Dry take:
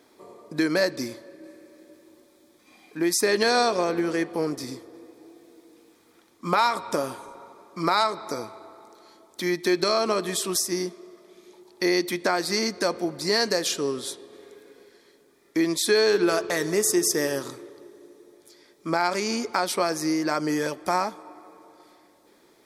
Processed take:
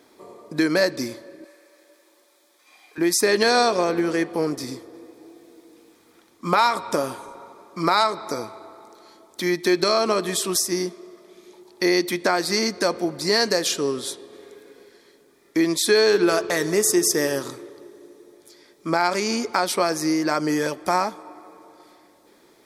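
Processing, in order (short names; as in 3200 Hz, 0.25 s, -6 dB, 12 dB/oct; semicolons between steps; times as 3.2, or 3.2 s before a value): 1.44–2.98 HPF 680 Hz 12 dB/oct; gain +3 dB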